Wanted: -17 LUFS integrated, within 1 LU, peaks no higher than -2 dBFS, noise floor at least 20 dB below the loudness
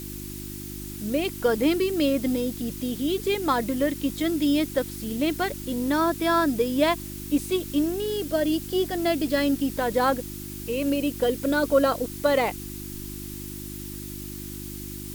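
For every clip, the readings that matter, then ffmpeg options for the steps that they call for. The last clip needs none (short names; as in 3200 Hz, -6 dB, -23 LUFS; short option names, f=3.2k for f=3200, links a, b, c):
hum 50 Hz; harmonics up to 350 Hz; hum level -36 dBFS; noise floor -37 dBFS; noise floor target -46 dBFS; loudness -26.0 LUFS; peak -8.0 dBFS; loudness target -17.0 LUFS
-> -af "bandreject=f=50:t=h:w=4,bandreject=f=100:t=h:w=4,bandreject=f=150:t=h:w=4,bandreject=f=200:t=h:w=4,bandreject=f=250:t=h:w=4,bandreject=f=300:t=h:w=4,bandreject=f=350:t=h:w=4"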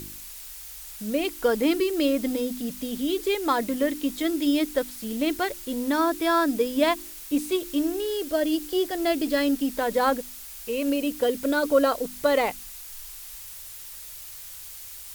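hum none; noise floor -41 dBFS; noise floor target -46 dBFS
-> -af "afftdn=nr=6:nf=-41"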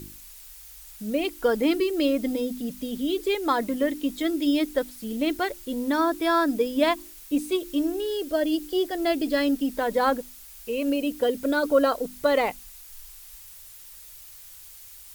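noise floor -46 dBFS; loudness -25.5 LUFS; peak -8.0 dBFS; loudness target -17.0 LUFS
-> -af "volume=8.5dB,alimiter=limit=-2dB:level=0:latency=1"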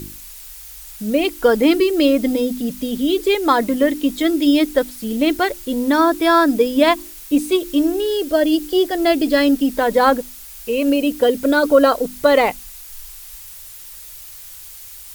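loudness -17.0 LUFS; peak -2.0 dBFS; noise floor -37 dBFS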